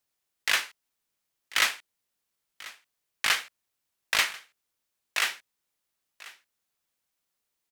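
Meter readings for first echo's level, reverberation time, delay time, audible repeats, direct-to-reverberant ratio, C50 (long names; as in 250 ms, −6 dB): −19.5 dB, no reverb audible, 1,040 ms, 1, no reverb audible, no reverb audible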